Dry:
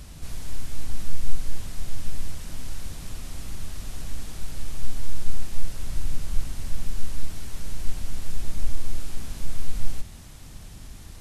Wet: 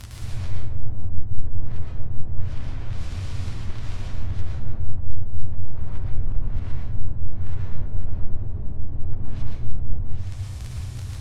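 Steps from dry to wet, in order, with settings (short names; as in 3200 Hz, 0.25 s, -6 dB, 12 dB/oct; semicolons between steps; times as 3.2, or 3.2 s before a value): crackle 17/s -24 dBFS; limiter -14.5 dBFS, peak gain reduction 9.5 dB; flange 0.21 Hz, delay 8.7 ms, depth 4.1 ms, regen -53%; band noise 60–120 Hz -41 dBFS; treble ducked by the level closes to 670 Hz, closed at -20 dBFS; plate-style reverb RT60 0.72 s, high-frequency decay 0.8×, pre-delay 0.1 s, DRR -1.5 dB; gain +4 dB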